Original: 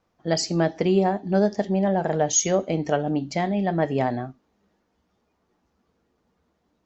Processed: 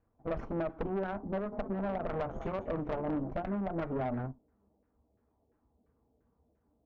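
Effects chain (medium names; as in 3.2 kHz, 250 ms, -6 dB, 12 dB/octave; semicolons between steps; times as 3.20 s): comb filter that takes the minimum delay 0.31 ms; LFO low-pass saw down 2.9 Hz 560–1700 Hz; compression 12:1, threshold -21 dBFS, peak gain reduction 9.5 dB; tilt EQ -2.5 dB/octave; comb of notches 180 Hz; 1.25–3.31 s: frequency-shifting echo 196 ms, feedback 33%, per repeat +52 Hz, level -14 dB; valve stage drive 23 dB, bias 0.55; trim -5 dB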